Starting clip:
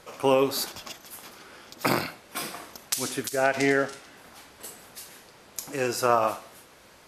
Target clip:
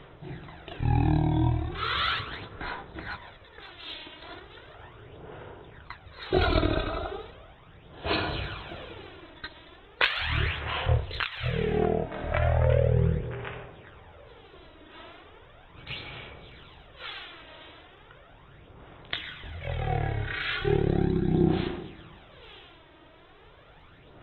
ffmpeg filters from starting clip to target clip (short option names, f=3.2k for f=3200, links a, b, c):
-af "asetrate=12877,aresample=44100,aphaser=in_gain=1:out_gain=1:delay=3.2:decay=0.49:speed=0.37:type=sinusoidal,equalizer=f=220:w=2.3:g=-10"